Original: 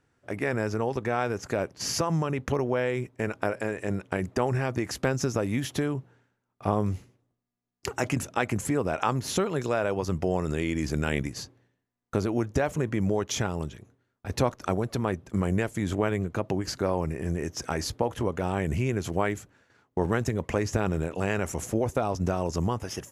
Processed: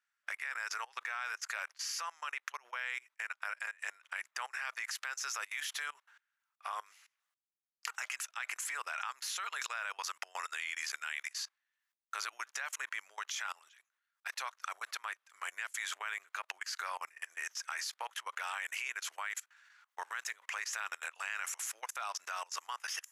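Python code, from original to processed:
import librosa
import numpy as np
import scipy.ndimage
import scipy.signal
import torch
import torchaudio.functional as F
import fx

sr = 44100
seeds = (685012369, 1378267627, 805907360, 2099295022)

y = fx.edit(x, sr, fx.fade_out_to(start_s=0.6, length_s=3.19, floor_db=-7.0), tone=tone)
y = scipy.signal.sosfilt(scipy.signal.butter(4, 1300.0, 'highpass', fs=sr, output='sos'), y)
y = fx.high_shelf(y, sr, hz=3200.0, db=-3.0)
y = fx.level_steps(y, sr, step_db=24)
y = y * 10.0 ** (9.0 / 20.0)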